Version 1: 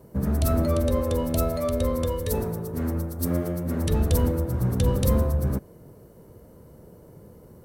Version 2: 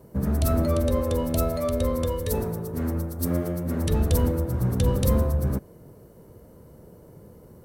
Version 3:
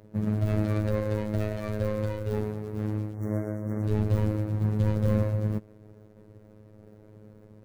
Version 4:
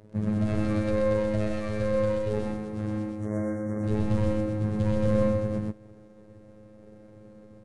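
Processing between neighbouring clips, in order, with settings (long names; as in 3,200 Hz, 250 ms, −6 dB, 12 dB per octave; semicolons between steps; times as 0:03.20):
no processing that can be heard
running median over 41 samples; gain on a spectral selection 0:03.14–0:03.84, 2,200–5,500 Hz −29 dB; phases set to zero 106 Hz
on a send: loudspeakers that aren't time-aligned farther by 33 metres −6 dB, 44 metres −2 dB; on the sum: downsampling to 22,050 Hz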